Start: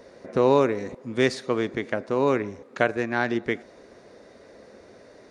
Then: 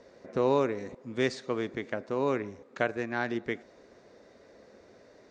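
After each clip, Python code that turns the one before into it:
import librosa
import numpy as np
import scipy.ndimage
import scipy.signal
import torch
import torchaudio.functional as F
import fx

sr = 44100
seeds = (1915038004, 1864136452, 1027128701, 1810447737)

y = scipy.signal.sosfilt(scipy.signal.butter(12, 8400.0, 'lowpass', fs=sr, output='sos'), x)
y = y * librosa.db_to_amplitude(-6.5)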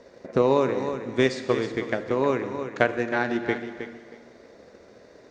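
y = fx.echo_feedback(x, sr, ms=316, feedback_pct=19, wet_db=-9)
y = fx.rev_plate(y, sr, seeds[0], rt60_s=1.9, hf_ratio=0.85, predelay_ms=0, drr_db=8.5)
y = fx.transient(y, sr, attack_db=5, sustain_db=0)
y = y * librosa.db_to_amplitude(3.5)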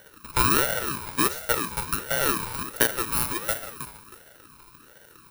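y = fx.bit_reversed(x, sr, seeds[1], block=32)
y = scipy.signal.sosfilt(scipy.signal.butter(4, 380.0, 'highpass', fs=sr, output='sos'), y)
y = fx.ring_lfo(y, sr, carrier_hz=770.0, swing_pct=35, hz=1.4)
y = y * librosa.db_to_amplitude(3.0)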